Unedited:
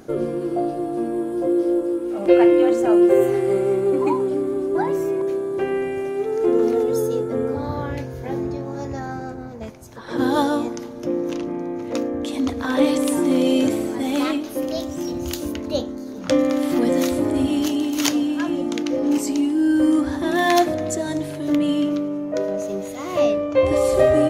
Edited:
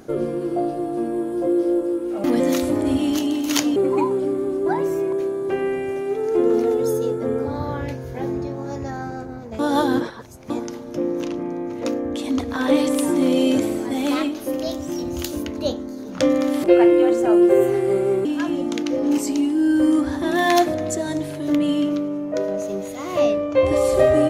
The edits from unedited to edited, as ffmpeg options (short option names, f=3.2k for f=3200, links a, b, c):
-filter_complex "[0:a]asplit=7[a][b][c][d][e][f][g];[a]atrim=end=2.242[h];[b]atrim=start=16.728:end=18.252[i];[c]atrim=start=3.848:end=9.682[j];[d]atrim=start=9.678:end=10.592,asetpts=PTS-STARTPTS,areverse[k];[e]atrim=start=10.588:end=16.732[l];[f]atrim=start=2.238:end=3.852[m];[g]atrim=start=18.248[n];[h][i]acrossfade=d=0.004:c1=hsin:c2=hsin[o];[o][j]acrossfade=d=0.004:c1=hsin:c2=hsin[p];[p][k]acrossfade=d=0.004:c1=hsin:c2=hsin[q];[q][l]acrossfade=d=0.004:c1=hsin:c2=hsin[r];[r][m]acrossfade=d=0.004:c1=hsin:c2=hsin[s];[s][n]acrossfade=d=0.004:c1=hsin:c2=hsin"